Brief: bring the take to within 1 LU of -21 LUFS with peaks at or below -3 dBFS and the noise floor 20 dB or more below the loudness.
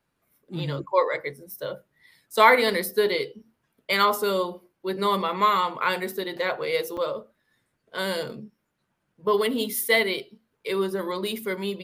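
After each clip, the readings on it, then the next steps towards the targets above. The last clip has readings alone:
dropouts 1; longest dropout 5.5 ms; loudness -25.0 LUFS; peak level -3.0 dBFS; loudness target -21.0 LUFS
-> interpolate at 6.97 s, 5.5 ms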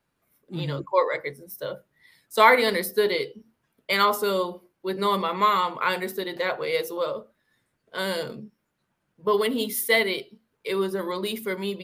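dropouts 0; loudness -25.0 LUFS; peak level -3.0 dBFS; loudness target -21.0 LUFS
-> trim +4 dB; peak limiter -3 dBFS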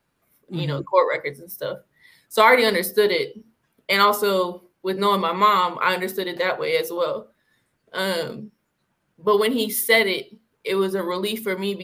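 loudness -21.5 LUFS; peak level -3.0 dBFS; noise floor -72 dBFS

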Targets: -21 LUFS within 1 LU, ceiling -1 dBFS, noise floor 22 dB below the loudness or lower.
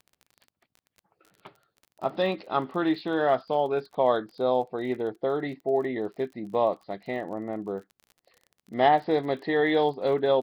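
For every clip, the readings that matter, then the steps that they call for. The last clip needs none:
tick rate 30 per s; loudness -27.0 LUFS; peak level -9.5 dBFS; loudness target -21.0 LUFS
-> de-click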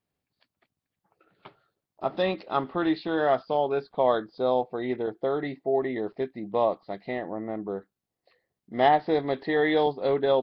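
tick rate 0 per s; loudness -27.0 LUFS; peak level -9.5 dBFS; loudness target -21.0 LUFS
-> trim +6 dB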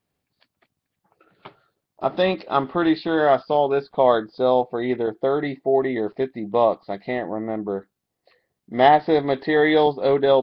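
loudness -21.0 LUFS; peak level -3.5 dBFS; noise floor -81 dBFS

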